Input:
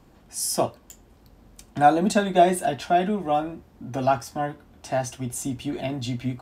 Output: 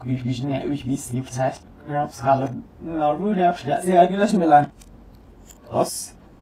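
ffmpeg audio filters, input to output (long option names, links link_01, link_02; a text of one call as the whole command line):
ffmpeg -i in.wav -filter_complex "[0:a]areverse,highshelf=frequency=2600:gain=-8.5,aecho=1:1:22|56:0.266|0.158,asplit=2[link_01][link_02];[link_02]acompressor=threshold=-31dB:ratio=6,volume=-2.5dB[link_03];[link_01][link_03]amix=inputs=2:normalize=0,volume=1.5dB" out.wav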